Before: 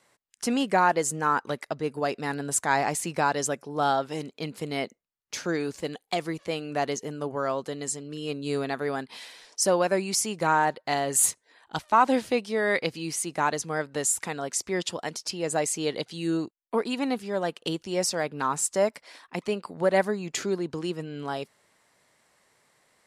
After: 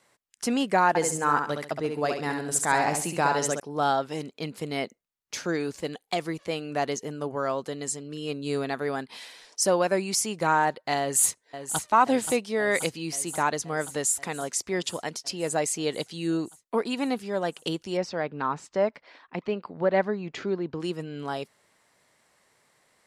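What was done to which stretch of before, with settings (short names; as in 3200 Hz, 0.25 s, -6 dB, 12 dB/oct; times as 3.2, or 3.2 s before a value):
0.88–3.6 feedback echo 68 ms, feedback 29%, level -5.5 dB
11–11.8 echo throw 0.53 s, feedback 75%, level -9.5 dB
17.97–20.8 air absorption 230 m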